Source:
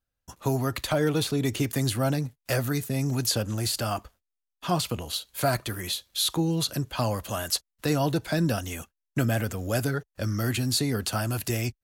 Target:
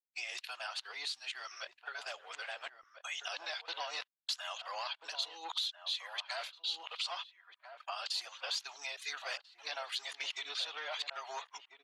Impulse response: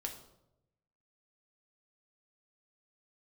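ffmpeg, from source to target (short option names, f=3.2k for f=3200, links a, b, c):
-filter_complex "[0:a]areverse,asplit=2[a][b];[b]acrusher=bits=6:mix=0:aa=0.000001,volume=-3dB[c];[a][c]amix=inputs=2:normalize=0,asoftclip=type=hard:threshold=-15.5dB,adynamicequalizer=threshold=0.00794:dfrequency=3400:dqfactor=1.7:tfrequency=3400:tqfactor=1.7:attack=5:release=100:ratio=0.375:range=2.5:mode=boostabove:tftype=bell,lowpass=4.6k,agate=range=-59dB:threshold=-39dB:ratio=16:detection=peak,highpass=f=890:w=0.5412,highpass=f=890:w=1.3066,afftdn=nr=19:nf=-47,acompressor=threshold=-43dB:ratio=4,equalizer=f=1.4k:t=o:w=1.3:g=-6,asplit=2[d][e];[e]adelay=1341,volume=-8dB,highshelf=f=4k:g=-30.2[f];[d][f]amix=inputs=2:normalize=0,volume=5.5dB" -ar 48000 -c:a libopus -b:a 24k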